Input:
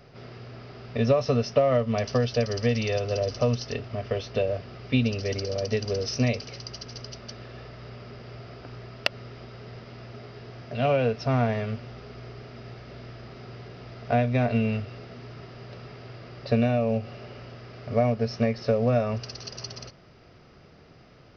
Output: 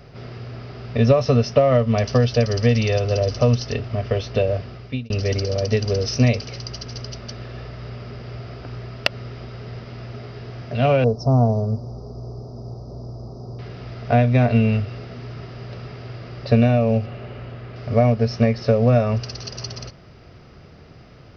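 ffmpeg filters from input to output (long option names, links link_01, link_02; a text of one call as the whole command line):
ffmpeg -i in.wav -filter_complex "[0:a]asettb=1/sr,asplit=3[link_01][link_02][link_03];[link_01]atrim=end=11.044[link_04];[link_02]atrim=start=11.04:end=13.59,asetpts=PTS-STARTPTS,afade=type=in:duration=0.004:curve=qsin,afade=type=out:start_time=2.546:duration=0.004:curve=qsin,asuperstop=centerf=2300:order=8:qfactor=0.56[link_05];[link_03]atrim=start=13.586[link_06];[link_04][link_05]acrossfade=duration=0.004:curve1=hsin:curve2=qsin[link_07];[link_07][link_06]acrossfade=duration=0.004:curve1=qsin:curve2=hsin,asettb=1/sr,asplit=3[link_08][link_09][link_10];[link_08]atrim=end=17.064[link_11];[link_09]atrim=start=17.06:end=17.76,asetpts=PTS-STARTPTS,afade=type=in:duration=0.004:curve=qsin,afade=type=out:start_time=0.696:duration=0.004:curve=qsin,equalizer=frequency=5500:width=1.8:gain=-11.5[link_12];[link_10]atrim=start=17.756[link_13];[link_11][link_12]acrossfade=duration=0.004:curve1=hsin:curve2=qsin[link_14];[link_14][link_13]acrossfade=duration=0.004:curve1=qsin:curve2=hsin,asplit=2[link_15][link_16];[link_15]atrim=end=5.1,asetpts=PTS-STARTPTS,afade=type=out:start_time=4.61:duration=0.49[link_17];[link_16]atrim=start=5.1,asetpts=PTS-STARTPTS,afade=type=in:duration=0.004:curve=hsin[link_18];[link_17][link_18]concat=n=2:v=0:a=1,equalizer=frequency=64:width_type=o:width=2.4:gain=6.5,volume=5dB" out.wav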